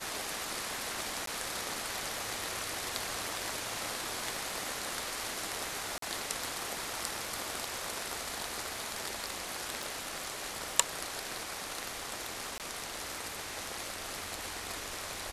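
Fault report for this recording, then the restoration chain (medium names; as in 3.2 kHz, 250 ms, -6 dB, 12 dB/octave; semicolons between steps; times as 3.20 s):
crackle 35 per s -46 dBFS
1.26–1.27 s: dropout 13 ms
5.98–6.02 s: dropout 43 ms
9.83 s: pop
12.58–12.60 s: dropout 18 ms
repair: de-click; interpolate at 1.26 s, 13 ms; interpolate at 5.98 s, 43 ms; interpolate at 12.58 s, 18 ms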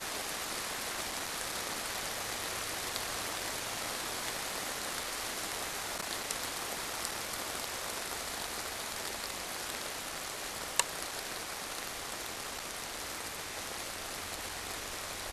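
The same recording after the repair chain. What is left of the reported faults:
9.83 s: pop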